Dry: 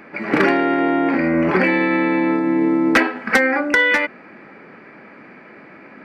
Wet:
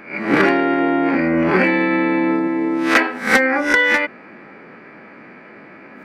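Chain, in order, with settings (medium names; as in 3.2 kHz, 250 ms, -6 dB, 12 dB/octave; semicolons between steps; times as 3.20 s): reverse spectral sustain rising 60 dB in 0.37 s; 2.47–3.10 s: bass shelf 200 Hz -11.5 dB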